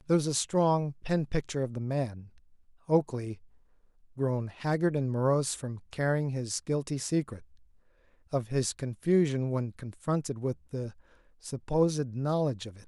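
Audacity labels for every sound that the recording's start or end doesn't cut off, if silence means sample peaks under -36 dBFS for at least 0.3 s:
2.890000	3.340000	sound
4.190000	7.370000	sound
8.330000	10.890000	sound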